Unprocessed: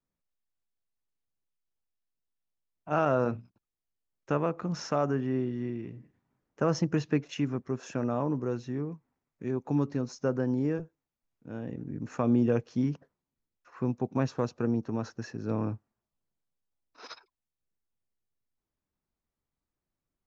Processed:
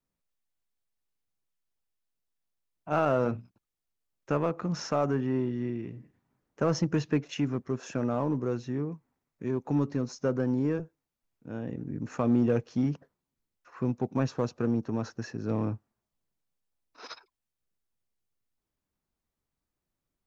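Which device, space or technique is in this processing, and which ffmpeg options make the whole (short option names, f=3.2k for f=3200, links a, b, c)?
parallel distortion: -filter_complex "[0:a]asplit=2[a][b];[b]asoftclip=type=hard:threshold=-27dB,volume=-7dB[c];[a][c]amix=inputs=2:normalize=0,volume=-1.5dB"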